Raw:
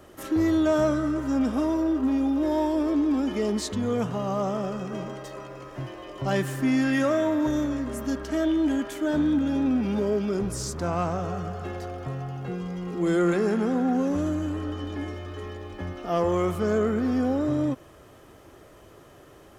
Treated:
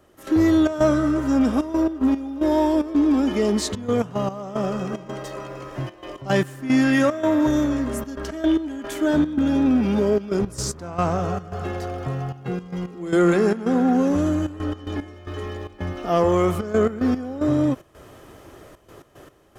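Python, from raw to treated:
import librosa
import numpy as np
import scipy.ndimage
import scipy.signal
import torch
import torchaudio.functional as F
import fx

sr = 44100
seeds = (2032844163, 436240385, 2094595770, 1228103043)

y = fx.step_gate(x, sr, bpm=112, pattern='..xxx.xxxxxx.x.x', floor_db=-12.0, edge_ms=4.5)
y = y * 10.0 ** (5.5 / 20.0)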